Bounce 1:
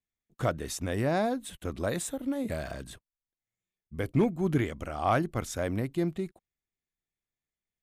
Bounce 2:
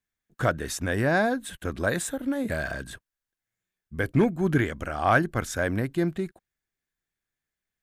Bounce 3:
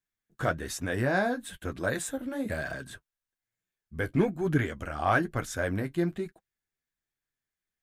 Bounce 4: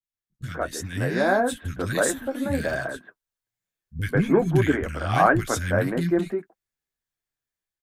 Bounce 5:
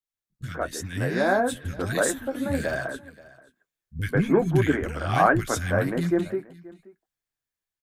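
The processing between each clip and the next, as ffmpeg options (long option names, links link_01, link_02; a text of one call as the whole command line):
ffmpeg -i in.wav -af "equalizer=frequency=1600:width_type=o:width=0.34:gain=10.5,volume=3.5dB" out.wav
ffmpeg -i in.wav -af "flanger=delay=6.1:depth=7:regen=-33:speed=1.1:shape=triangular" out.wav
ffmpeg -i in.wav -filter_complex "[0:a]agate=range=-7dB:threshold=-42dB:ratio=16:detection=peak,acrossover=split=220|1900[link_01][link_02][link_03];[link_03]adelay=30[link_04];[link_02]adelay=140[link_05];[link_01][link_05][link_04]amix=inputs=3:normalize=0,dynaudnorm=framelen=690:gausssize=3:maxgain=8.5dB" out.wav
ffmpeg -i in.wav -af "aecho=1:1:529:0.0841,volume=-1dB" out.wav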